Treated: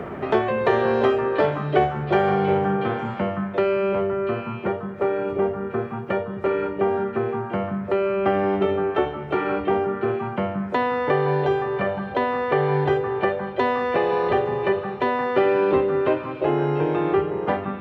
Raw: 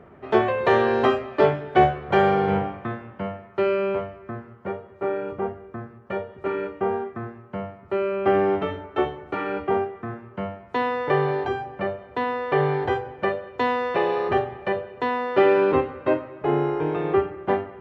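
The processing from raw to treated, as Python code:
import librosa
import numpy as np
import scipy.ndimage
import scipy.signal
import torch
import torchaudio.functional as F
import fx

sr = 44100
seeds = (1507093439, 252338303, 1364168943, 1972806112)

y = fx.echo_stepped(x, sr, ms=172, hz=170.0, octaves=1.4, feedback_pct=70, wet_db=-1)
y = fx.band_squash(y, sr, depth_pct=70)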